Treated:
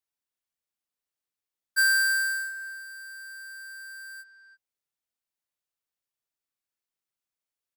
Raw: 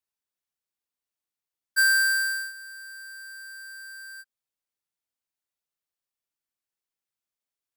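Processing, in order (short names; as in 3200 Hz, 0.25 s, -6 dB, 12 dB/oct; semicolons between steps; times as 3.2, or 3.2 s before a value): speakerphone echo 0.33 s, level -10 dB; gain -1.5 dB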